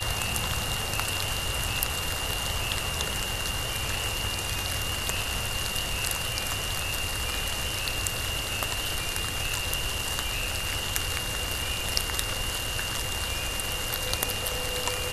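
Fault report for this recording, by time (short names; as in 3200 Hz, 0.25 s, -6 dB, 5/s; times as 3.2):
tone 2800 Hz -34 dBFS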